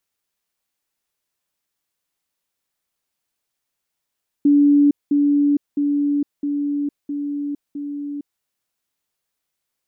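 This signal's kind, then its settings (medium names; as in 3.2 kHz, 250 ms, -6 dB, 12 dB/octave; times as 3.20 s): level ladder 288 Hz -10 dBFS, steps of -3 dB, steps 6, 0.46 s 0.20 s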